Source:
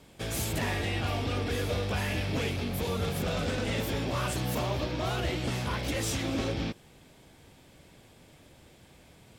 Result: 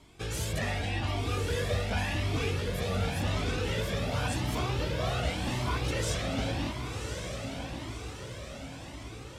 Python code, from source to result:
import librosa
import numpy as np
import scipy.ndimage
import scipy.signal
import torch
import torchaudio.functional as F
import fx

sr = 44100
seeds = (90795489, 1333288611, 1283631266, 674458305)

y = scipy.signal.sosfilt(scipy.signal.butter(2, 10000.0, 'lowpass', fs=sr, output='sos'), x)
y = fx.echo_diffused(y, sr, ms=1105, feedback_pct=59, wet_db=-6)
y = fx.comb_cascade(y, sr, direction='rising', hz=0.89)
y = y * 10.0 ** (3.0 / 20.0)